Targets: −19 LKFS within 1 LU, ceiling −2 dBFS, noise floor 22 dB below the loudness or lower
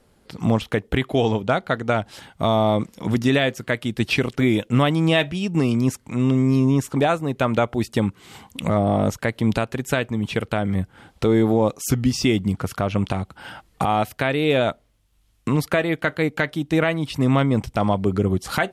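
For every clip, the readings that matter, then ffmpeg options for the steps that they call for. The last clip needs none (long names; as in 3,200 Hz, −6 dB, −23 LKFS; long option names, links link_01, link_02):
integrated loudness −21.5 LKFS; sample peak −5.5 dBFS; target loudness −19.0 LKFS
→ -af "volume=2.5dB"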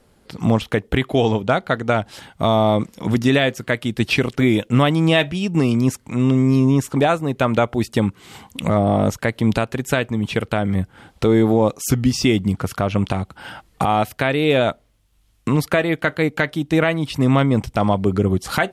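integrated loudness −19.0 LKFS; sample peak −3.0 dBFS; background noise floor −58 dBFS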